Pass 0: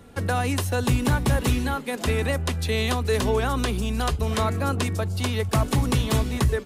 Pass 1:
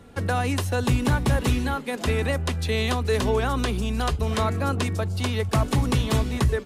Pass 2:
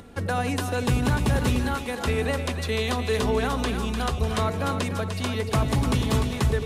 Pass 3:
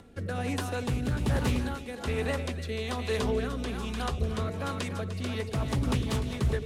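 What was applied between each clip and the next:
high shelf 10000 Hz -7 dB
split-band echo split 700 Hz, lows 92 ms, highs 0.299 s, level -7 dB; upward compressor, threshold -40 dBFS; gain -1.5 dB
rotary speaker horn 1.2 Hz, later 5 Hz, at 5; Doppler distortion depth 0.26 ms; gain -4 dB

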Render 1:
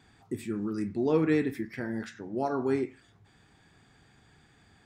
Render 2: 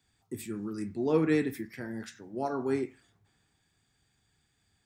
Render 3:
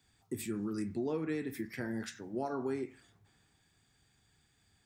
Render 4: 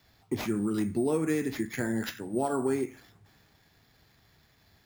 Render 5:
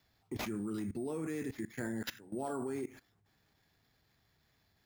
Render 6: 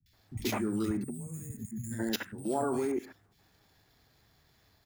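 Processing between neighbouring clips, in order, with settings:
high shelf 7400 Hz +11 dB; three-band expander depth 40%; gain -3 dB
compressor 8:1, threshold -34 dBFS, peak gain reduction 14 dB; gain +2 dB
sample-and-hold 5×; gain +7.5 dB
level quantiser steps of 18 dB; gain -1.5 dB
spectral gain 0.97–1.86, 250–6400 Hz -23 dB; three bands offset in time lows, highs, mids 60/130 ms, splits 180/2100 Hz; gain +8 dB

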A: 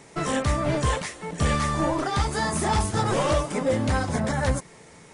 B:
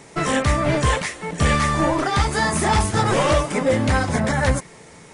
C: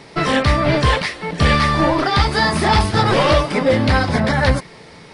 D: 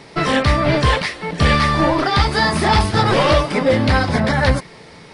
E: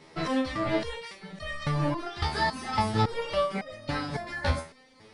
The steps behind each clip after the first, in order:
dynamic EQ 2100 Hz, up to +4 dB, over -43 dBFS, Q 1.4; gain +4.5 dB
resonant high shelf 5700 Hz -6.5 dB, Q 3; gain +3.5 dB
nothing audible
stepped resonator 3.6 Hz 81–620 Hz; gain -2.5 dB

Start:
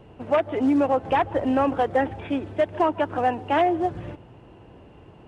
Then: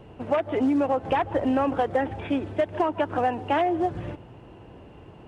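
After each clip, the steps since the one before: compressor, threshold -21 dBFS, peak gain reduction 5.5 dB; gain +1.5 dB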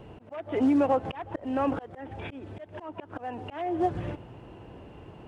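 auto swell 0.372 s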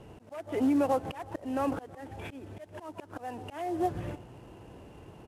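CVSD 64 kbps; outdoor echo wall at 55 m, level -28 dB; gain -3 dB

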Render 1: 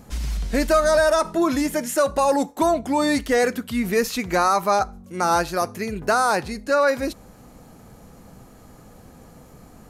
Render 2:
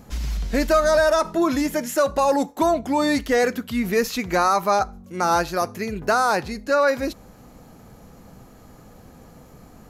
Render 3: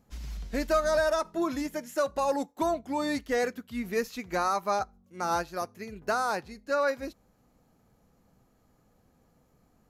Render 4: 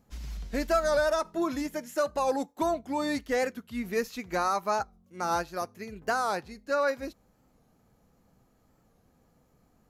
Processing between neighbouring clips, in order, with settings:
bell 9000 Hz -9.5 dB 0.25 oct
upward expander 1.5:1, over -39 dBFS; gain -7 dB
record warp 45 rpm, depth 100 cents

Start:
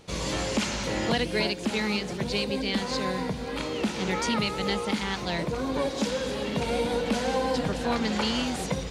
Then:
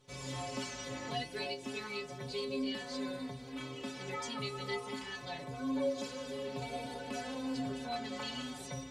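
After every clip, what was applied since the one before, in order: metallic resonator 130 Hz, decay 0.39 s, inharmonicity 0.008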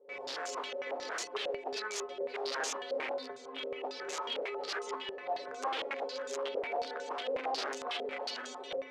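wrapped overs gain 33.5 dB; ladder high-pass 370 Hz, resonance 50%; stepped low-pass 11 Hz 530–6700 Hz; gain +7.5 dB

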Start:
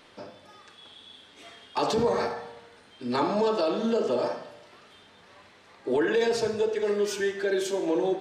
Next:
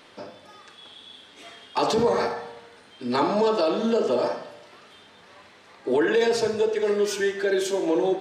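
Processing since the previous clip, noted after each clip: low shelf 80 Hz -8 dB; gain +3.5 dB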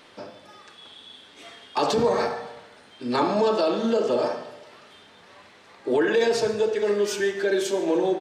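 feedback echo 0.143 s, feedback 54%, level -20.5 dB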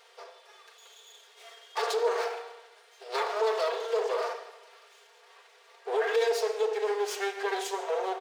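minimum comb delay 4.3 ms; brick-wall FIR high-pass 360 Hz; gain -4.5 dB

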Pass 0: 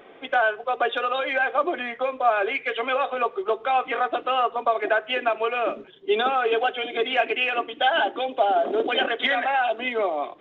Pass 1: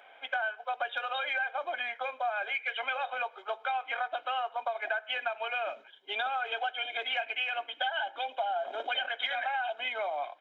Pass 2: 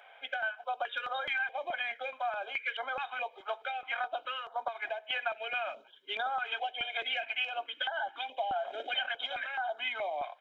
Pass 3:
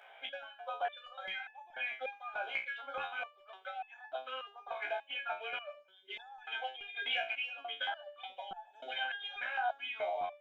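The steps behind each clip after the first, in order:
HPF 800 Hz 12 dB/oct; comb 1.3 ms, depth 65%; compressor 6:1, threshold -25 dBFS, peak gain reduction 11 dB; gain -4 dB
stepped notch 4.7 Hz 300–2600 Hz
stepped resonator 3.4 Hz 61–860 Hz; gain +7 dB

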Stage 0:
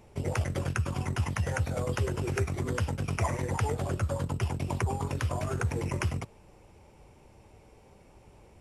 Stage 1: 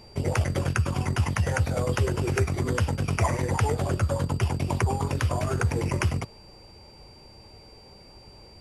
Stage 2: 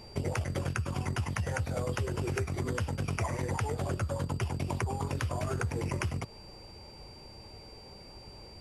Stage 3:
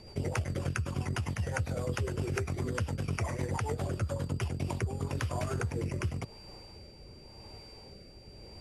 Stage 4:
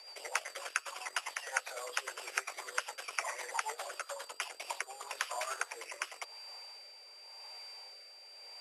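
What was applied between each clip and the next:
whine 4700 Hz -57 dBFS; gain +5 dB
compressor 4:1, threshold -30 dBFS, peak gain reduction 10 dB
rotary speaker horn 7.5 Hz, later 0.9 Hz, at 4.03; gain +1 dB
Bessel high-pass 1000 Hz, order 6; gain +4.5 dB

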